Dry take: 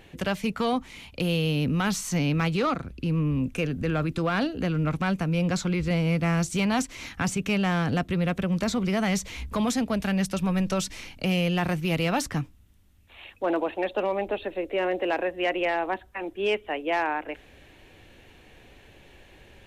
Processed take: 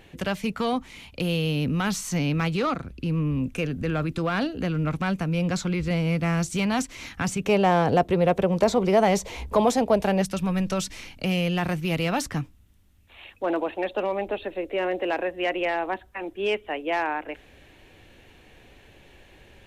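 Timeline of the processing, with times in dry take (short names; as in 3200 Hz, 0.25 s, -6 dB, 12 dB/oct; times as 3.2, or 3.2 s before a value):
7.45–10.22 band shelf 600 Hz +11 dB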